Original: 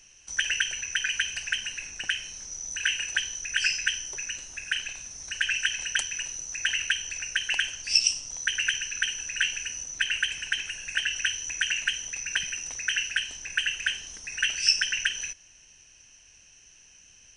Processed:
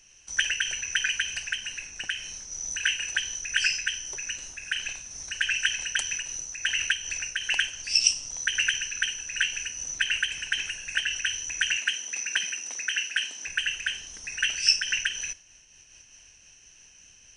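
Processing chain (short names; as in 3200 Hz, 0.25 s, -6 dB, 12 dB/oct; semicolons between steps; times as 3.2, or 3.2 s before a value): 11.77–13.47 HPF 210 Hz 24 dB/oct; noise-modulated level, depth 60%; gain +4 dB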